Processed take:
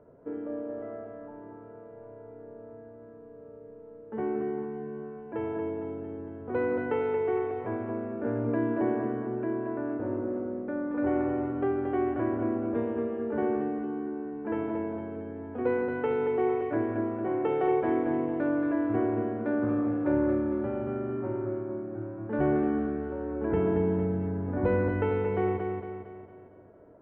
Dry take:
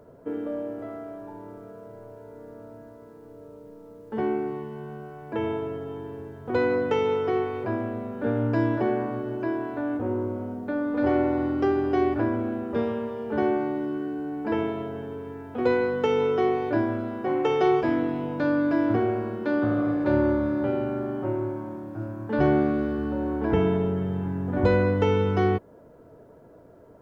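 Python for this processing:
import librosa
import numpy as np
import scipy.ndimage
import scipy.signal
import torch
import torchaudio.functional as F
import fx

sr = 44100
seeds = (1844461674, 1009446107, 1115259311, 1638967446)

y = scipy.signal.sosfilt(scipy.signal.butter(4, 2400.0, 'lowpass', fs=sr, output='sos'), x)
y = fx.peak_eq(y, sr, hz=380.0, db=2.5, octaves=1.6)
y = fx.echo_feedback(y, sr, ms=228, feedback_pct=48, wet_db=-5)
y = F.gain(torch.from_numpy(y), -7.0).numpy()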